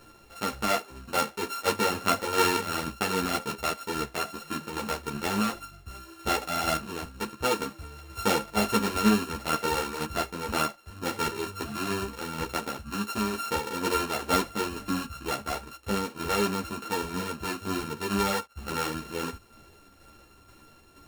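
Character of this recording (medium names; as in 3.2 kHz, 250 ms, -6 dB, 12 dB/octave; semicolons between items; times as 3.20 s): a buzz of ramps at a fixed pitch in blocks of 32 samples; tremolo saw down 2.1 Hz, depth 45%; a shimmering, thickened sound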